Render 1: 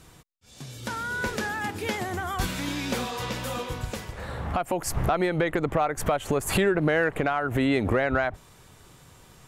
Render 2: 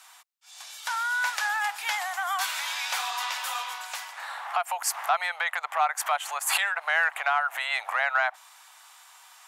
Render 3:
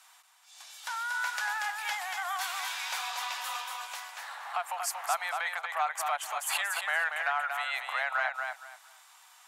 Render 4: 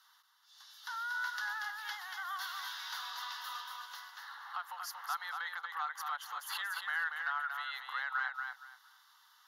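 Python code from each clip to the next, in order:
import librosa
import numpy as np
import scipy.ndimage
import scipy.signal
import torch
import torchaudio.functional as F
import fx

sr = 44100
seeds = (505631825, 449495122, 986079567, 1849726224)

y1 = scipy.signal.sosfilt(scipy.signal.butter(8, 750.0, 'highpass', fs=sr, output='sos'), x)
y1 = y1 * librosa.db_to_amplitude(4.0)
y2 = fx.echo_feedback(y1, sr, ms=234, feedback_pct=22, wet_db=-5.0)
y2 = y2 * librosa.db_to_amplitude(-6.0)
y3 = fx.fixed_phaser(y2, sr, hz=2400.0, stages=6)
y3 = y3 * librosa.db_to_amplitude(-4.0)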